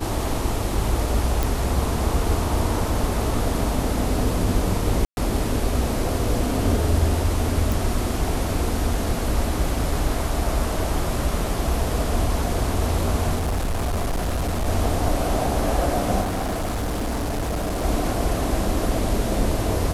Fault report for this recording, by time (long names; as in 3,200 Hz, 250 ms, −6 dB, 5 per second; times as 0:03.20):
0:01.43: click
0:05.05–0:05.17: drop-out 121 ms
0:07.72: click
0:13.35–0:14.68: clipping −20 dBFS
0:16.21–0:17.85: clipping −22 dBFS